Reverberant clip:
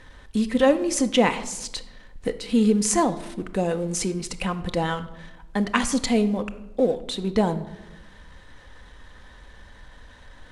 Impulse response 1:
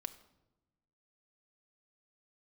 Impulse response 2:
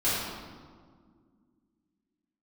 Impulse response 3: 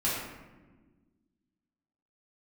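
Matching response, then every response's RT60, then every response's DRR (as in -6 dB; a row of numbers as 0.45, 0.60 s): 1; 1.0, 1.9, 1.3 s; 8.0, -12.0, -8.5 dB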